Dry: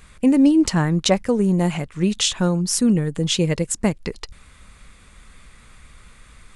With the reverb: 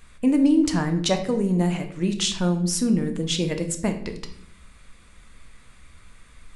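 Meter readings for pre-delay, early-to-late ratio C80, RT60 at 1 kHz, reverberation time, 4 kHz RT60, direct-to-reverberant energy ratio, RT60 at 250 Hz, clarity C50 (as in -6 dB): 3 ms, 13.5 dB, 0.50 s, 0.65 s, 0.50 s, 5.5 dB, 1.0 s, 10.0 dB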